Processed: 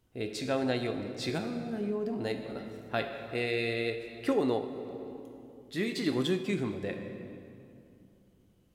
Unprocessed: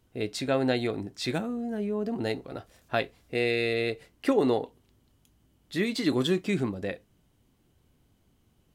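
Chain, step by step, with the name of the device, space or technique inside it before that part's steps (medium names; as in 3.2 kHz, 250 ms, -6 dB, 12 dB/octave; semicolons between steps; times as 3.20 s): compressed reverb return (on a send at -3.5 dB: reverberation RT60 2.5 s, pre-delay 18 ms + compression, threshold -27 dBFS, peak gain reduction 8 dB); on the sum: trim -4.5 dB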